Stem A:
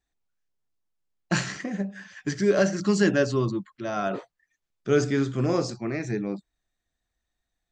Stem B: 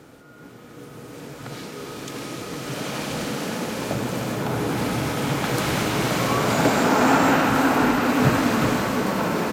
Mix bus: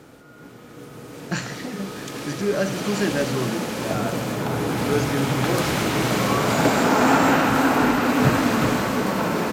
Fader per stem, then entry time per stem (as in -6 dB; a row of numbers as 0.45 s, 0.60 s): -2.0 dB, +0.5 dB; 0.00 s, 0.00 s